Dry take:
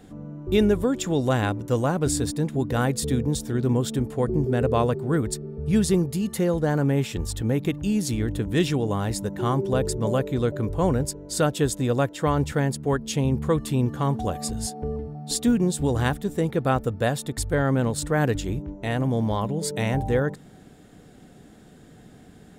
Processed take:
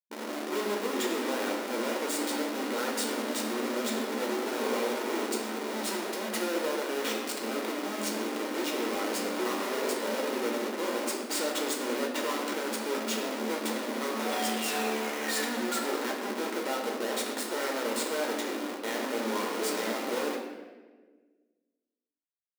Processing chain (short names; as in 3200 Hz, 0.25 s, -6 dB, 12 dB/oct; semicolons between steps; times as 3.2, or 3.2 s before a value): painted sound fall, 14.19–15.98, 1200–3700 Hz -36 dBFS; Schmitt trigger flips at -35 dBFS; brick-wall FIR high-pass 220 Hz; reverb RT60 1.4 s, pre-delay 9 ms, DRR -0.5 dB; gain -8.5 dB